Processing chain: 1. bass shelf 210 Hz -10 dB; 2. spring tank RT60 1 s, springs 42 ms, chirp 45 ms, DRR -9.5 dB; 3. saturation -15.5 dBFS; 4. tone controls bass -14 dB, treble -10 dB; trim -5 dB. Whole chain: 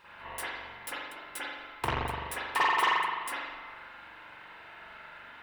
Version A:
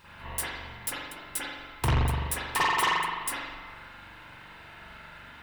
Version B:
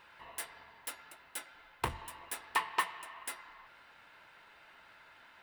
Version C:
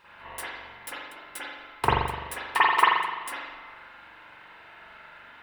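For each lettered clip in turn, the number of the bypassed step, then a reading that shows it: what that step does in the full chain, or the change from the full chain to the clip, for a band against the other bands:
4, 125 Hz band +11.0 dB; 2, crest factor change +7.0 dB; 3, distortion -7 dB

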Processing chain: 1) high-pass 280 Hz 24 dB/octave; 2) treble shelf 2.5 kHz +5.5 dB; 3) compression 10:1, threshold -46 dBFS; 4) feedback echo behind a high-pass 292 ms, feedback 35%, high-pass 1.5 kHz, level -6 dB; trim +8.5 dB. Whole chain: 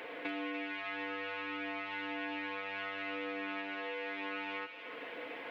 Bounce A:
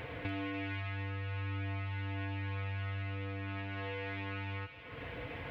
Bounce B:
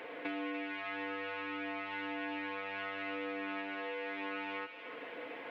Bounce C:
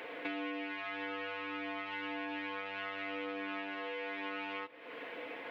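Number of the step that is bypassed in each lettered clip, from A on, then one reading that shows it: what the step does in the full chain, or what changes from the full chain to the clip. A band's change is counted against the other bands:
1, 125 Hz band +34.0 dB; 2, 4 kHz band -3.0 dB; 4, echo-to-direct -8.5 dB to none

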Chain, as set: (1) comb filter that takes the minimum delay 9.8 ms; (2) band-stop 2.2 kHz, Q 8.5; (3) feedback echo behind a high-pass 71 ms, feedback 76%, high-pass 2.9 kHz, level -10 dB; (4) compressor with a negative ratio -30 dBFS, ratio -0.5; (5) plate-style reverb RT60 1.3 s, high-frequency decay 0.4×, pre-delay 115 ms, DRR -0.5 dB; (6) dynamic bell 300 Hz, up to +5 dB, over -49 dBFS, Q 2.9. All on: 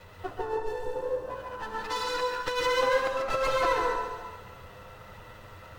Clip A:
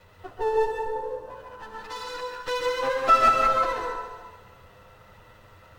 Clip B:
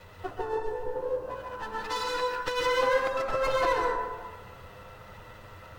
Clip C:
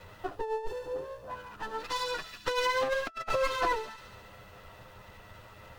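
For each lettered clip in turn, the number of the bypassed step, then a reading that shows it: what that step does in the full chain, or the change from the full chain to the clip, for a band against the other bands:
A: 4, 1 kHz band +6.5 dB; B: 3, 8 kHz band -1.5 dB; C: 5, loudness change -3.5 LU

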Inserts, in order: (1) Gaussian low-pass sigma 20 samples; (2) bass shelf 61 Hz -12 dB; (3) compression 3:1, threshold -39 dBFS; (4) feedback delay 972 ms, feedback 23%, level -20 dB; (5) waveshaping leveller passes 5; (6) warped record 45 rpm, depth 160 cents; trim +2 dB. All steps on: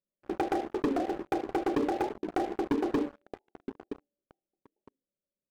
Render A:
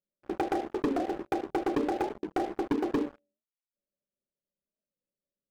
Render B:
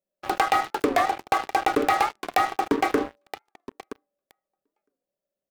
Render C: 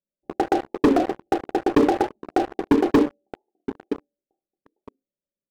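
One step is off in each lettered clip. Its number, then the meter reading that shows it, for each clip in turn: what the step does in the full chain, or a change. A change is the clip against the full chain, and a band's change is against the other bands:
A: 4, momentary loudness spread change -12 LU; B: 1, 250 Hz band -11.5 dB; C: 3, mean gain reduction 6.0 dB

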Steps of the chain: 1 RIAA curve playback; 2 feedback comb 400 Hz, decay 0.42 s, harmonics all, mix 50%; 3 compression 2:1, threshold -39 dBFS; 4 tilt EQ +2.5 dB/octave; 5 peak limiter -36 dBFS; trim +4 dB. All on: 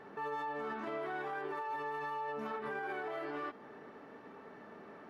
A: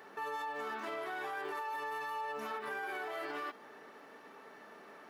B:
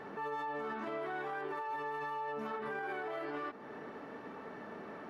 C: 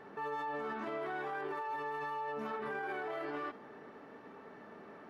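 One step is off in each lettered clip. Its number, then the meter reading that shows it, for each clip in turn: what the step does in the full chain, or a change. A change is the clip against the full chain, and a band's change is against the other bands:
1, 4 kHz band +7.0 dB; 2, momentary loudness spread change -5 LU; 3, mean gain reduction 4.0 dB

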